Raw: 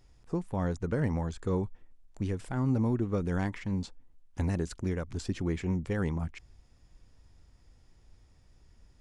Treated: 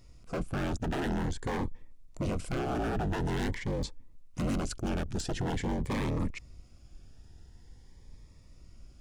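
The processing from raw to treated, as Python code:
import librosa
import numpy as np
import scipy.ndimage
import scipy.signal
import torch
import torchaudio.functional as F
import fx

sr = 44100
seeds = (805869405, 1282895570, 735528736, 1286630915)

y = fx.octave_divider(x, sr, octaves=2, level_db=-2.0)
y = 10.0 ** (-30.5 / 20.0) * (np.abs((y / 10.0 ** (-30.5 / 20.0) + 3.0) % 4.0 - 2.0) - 1.0)
y = fx.notch_cascade(y, sr, direction='rising', hz=0.47)
y = F.gain(torch.from_numpy(y), 5.5).numpy()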